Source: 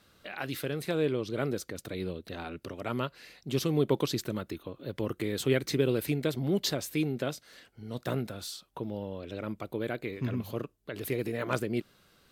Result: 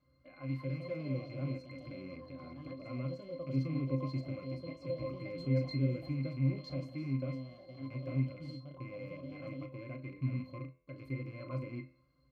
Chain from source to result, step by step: rattling part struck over -38 dBFS, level -25 dBFS; in parallel at -1.5 dB: limiter -23 dBFS, peak gain reduction 11 dB; on the sum: doubler 37 ms -10 dB; de-hum 85.52 Hz, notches 35; echoes that change speed 0.293 s, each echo +4 st, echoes 2, each echo -6 dB; octave resonator C, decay 0.18 s; gain -1.5 dB

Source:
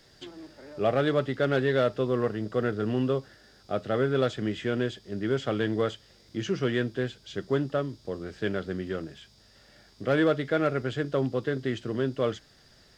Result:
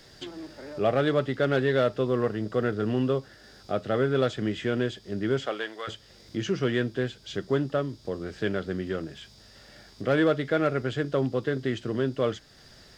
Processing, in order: in parallel at -1 dB: compressor, threshold -42 dBFS, peak gain reduction 21 dB; 5.45–5.87 on the sum: HPF 400 Hz -> 1200 Hz 12 dB/oct

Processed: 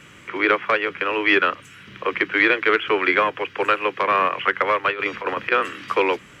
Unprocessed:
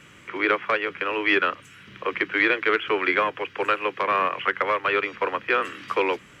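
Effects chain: 4.9–5.52 negative-ratio compressor -27 dBFS, ratio -0.5; gain +3.5 dB

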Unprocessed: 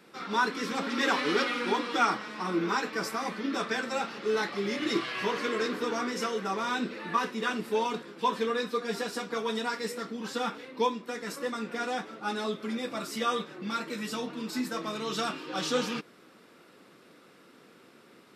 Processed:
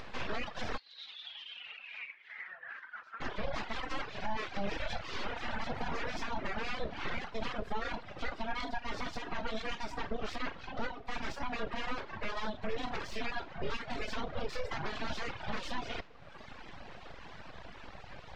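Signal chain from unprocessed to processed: compressor 6:1, threshold -36 dBFS, peak gain reduction 15.5 dB; reverb RT60 0.70 s, pre-delay 24 ms, DRR 7 dB; full-wave rectifier; reverb removal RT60 1.2 s; 0.76–3.2 band-pass 4400 Hz -> 1300 Hz, Q 11; limiter -33 dBFS, peak gain reduction 8 dB; air absorption 180 m; upward compressor, threshold -49 dBFS; gain +9.5 dB

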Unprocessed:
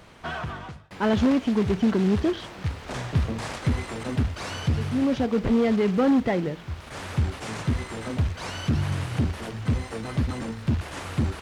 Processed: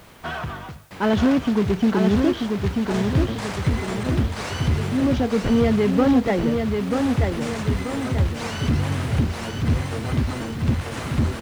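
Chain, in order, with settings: in parallel at -9.5 dB: requantised 8-bit, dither triangular; on the sum: feedback echo 0.936 s, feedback 46%, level -4.5 dB

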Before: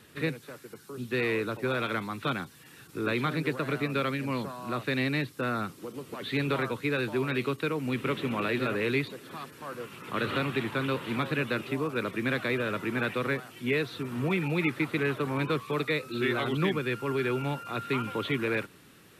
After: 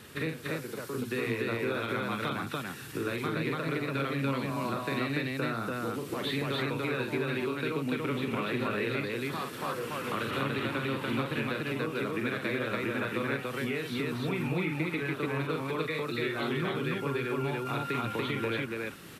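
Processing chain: compressor, threshold -37 dBFS, peak gain reduction 14 dB; loudspeakers at several distances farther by 15 m -5 dB, 99 m -1 dB; gain +5 dB

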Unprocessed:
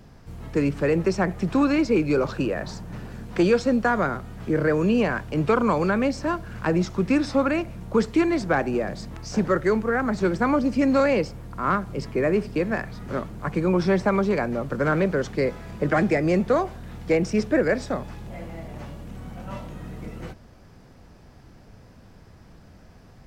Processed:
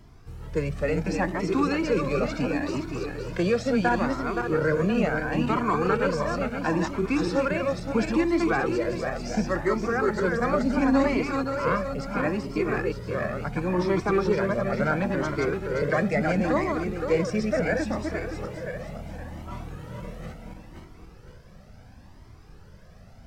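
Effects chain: regenerating reverse delay 0.26 s, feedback 63%, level -3.5 dB; cascading flanger rising 0.72 Hz; gain +1 dB

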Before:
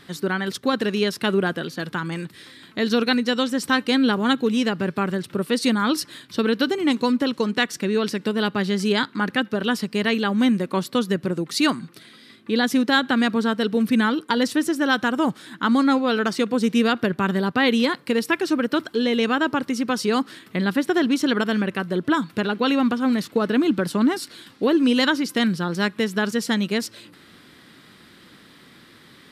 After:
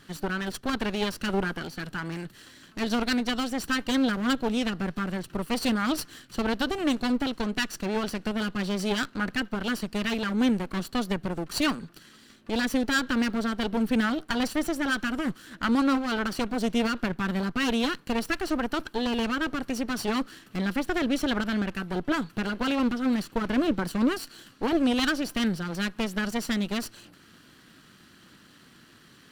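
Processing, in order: minimum comb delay 0.68 ms; gain -4 dB

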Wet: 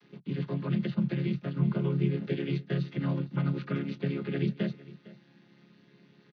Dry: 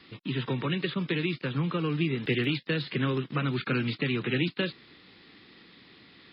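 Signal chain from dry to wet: chord vocoder major triad, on C#3; echo 0.456 s -19 dB

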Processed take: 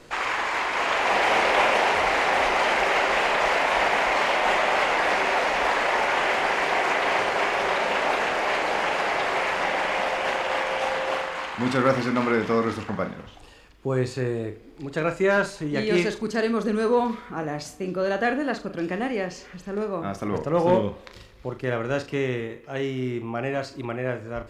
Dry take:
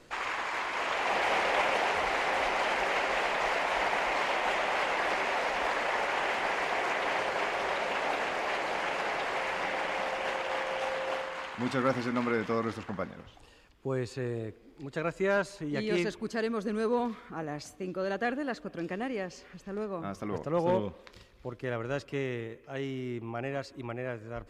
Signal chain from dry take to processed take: flutter echo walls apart 6.7 m, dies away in 0.26 s; gain +7 dB

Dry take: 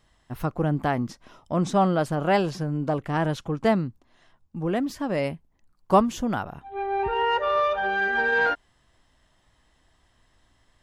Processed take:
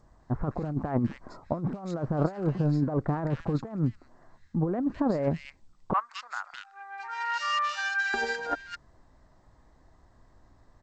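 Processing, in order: Wiener smoothing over 15 samples; 5.93–8.14 HPF 1400 Hz 24 dB/oct; bell 3400 Hz -8 dB 0.28 oct; negative-ratio compressor -28 dBFS, ratio -0.5; bands offset in time lows, highs 0.21 s, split 1900 Hz; gain +2 dB; G.722 64 kbps 16000 Hz

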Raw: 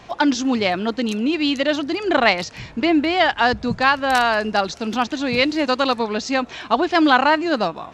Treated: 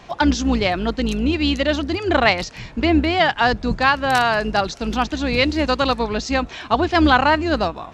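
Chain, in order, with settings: octaver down 2 oct, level -3 dB

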